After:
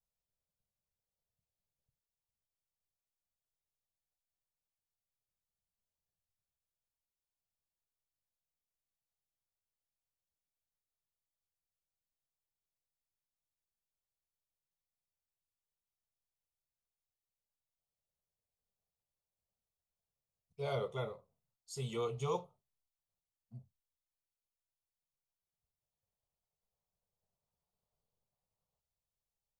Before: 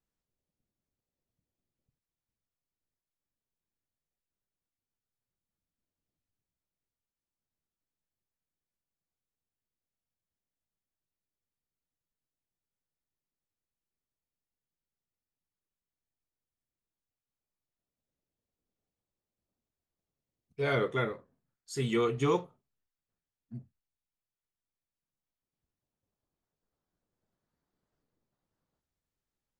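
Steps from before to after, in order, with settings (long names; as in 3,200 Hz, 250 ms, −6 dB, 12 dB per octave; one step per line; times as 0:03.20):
phaser with its sweep stopped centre 710 Hz, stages 4
level −4 dB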